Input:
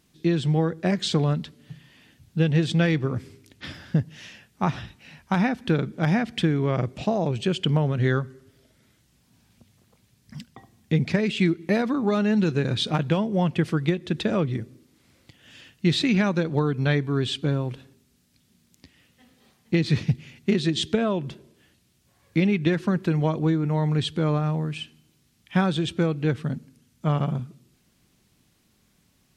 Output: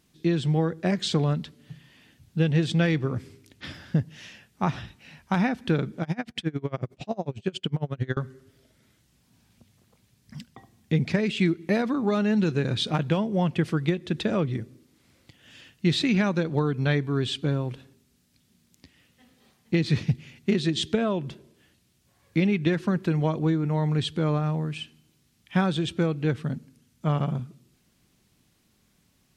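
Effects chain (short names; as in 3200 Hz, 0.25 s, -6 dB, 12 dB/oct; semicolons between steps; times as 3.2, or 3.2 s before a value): 6.02–8.17 dB-linear tremolo 11 Hz, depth 29 dB; gain -1.5 dB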